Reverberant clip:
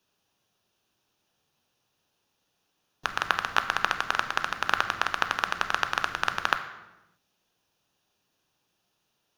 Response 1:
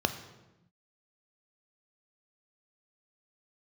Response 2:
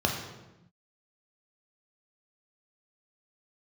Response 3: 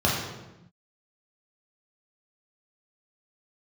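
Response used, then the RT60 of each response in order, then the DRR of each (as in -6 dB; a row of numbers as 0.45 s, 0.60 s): 1; 0.95 s, 0.95 s, 0.95 s; 8.5 dB, 1.0 dB, -5.0 dB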